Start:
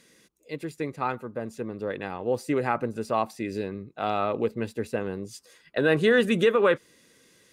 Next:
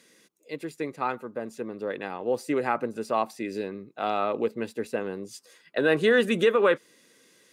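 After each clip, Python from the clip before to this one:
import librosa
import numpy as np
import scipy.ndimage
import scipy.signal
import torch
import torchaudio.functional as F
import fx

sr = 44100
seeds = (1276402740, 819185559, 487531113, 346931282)

y = scipy.signal.sosfilt(scipy.signal.butter(2, 200.0, 'highpass', fs=sr, output='sos'), x)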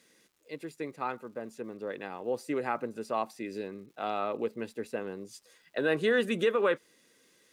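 y = fx.dmg_crackle(x, sr, seeds[0], per_s=380.0, level_db=-53.0)
y = y * 10.0 ** (-5.5 / 20.0)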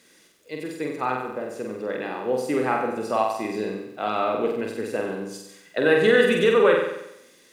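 y = fx.room_flutter(x, sr, wall_m=8.0, rt60_s=0.83)
y = y * 10.0 ** (6.5 / 20.0)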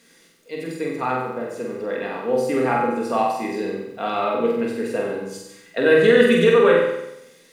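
y = fx.room_shoebox(x, sr, seeds[1], volume_m3=530.0, walls='furnished', distance_m=1.7)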